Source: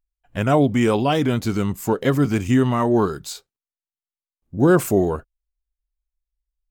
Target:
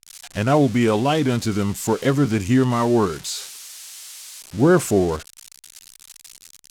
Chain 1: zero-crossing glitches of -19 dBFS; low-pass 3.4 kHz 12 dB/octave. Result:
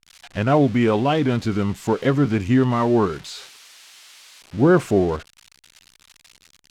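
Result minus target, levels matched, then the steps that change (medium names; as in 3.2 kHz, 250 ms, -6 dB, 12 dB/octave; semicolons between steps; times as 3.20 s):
8 kHz band -11.5 dB
change: low-pass 7.3 kHz 12 dB/octave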